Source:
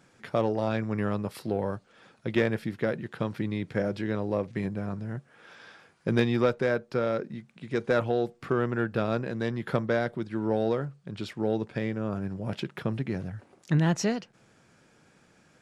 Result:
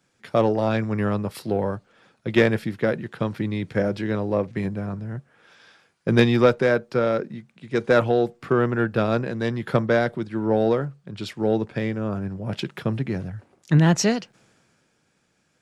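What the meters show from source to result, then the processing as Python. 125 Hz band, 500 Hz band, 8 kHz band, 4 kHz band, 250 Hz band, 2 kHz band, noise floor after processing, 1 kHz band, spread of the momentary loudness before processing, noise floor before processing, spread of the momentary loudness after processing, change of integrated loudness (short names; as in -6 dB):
+6.0 dB, +6.5 dB, n/a, +7.5 dB, +6.0 dB, +6.5 dB, -68 dBFS, +6.5 dB, 10 LU, -62 dBFS, 12 LU, +6.5 dB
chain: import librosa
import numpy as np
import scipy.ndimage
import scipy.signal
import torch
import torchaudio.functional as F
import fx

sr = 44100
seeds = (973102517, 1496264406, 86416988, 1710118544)

y = fx.band_widen(x, sr, depth_pct=40)
y = y * librosa.db_to_amplitude(6.0)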